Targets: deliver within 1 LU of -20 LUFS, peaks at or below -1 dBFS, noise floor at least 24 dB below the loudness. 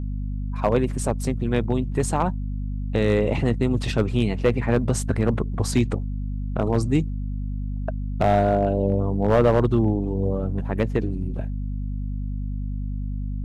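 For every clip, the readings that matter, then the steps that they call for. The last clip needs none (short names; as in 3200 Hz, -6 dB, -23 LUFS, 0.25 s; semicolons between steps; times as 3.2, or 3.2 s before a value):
clipped 0.3%; flat tops at -10.5 dBFS; hum 50 Hz; harmonics up to 250 Hz; hum level -25 dBFS; loudness -24.0 LUFS; peak -10.5 dBFS; loudness target -20.0 LUFS
-> clip repair -10.5 dBFS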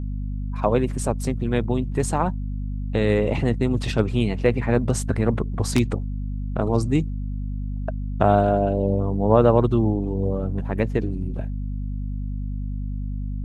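clipped 0.0%; hum 50 Hz; harmonics up to 250 Hz; hum level -25 dBFS
-> de-hum 50 Hz, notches 5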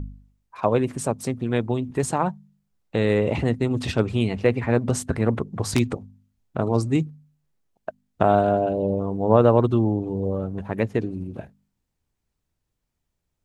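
hum none; loudness -23.0 LUFS; peak -2.0 dBFS; loudness target -20.0 LUFS
-> gain +3 dB; limiter -1 dBFS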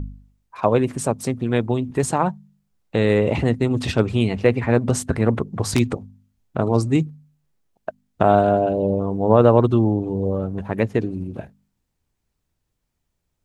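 loudness -20.5 LUFS; peak -1.0 dBFS; noise floor -76 dBFS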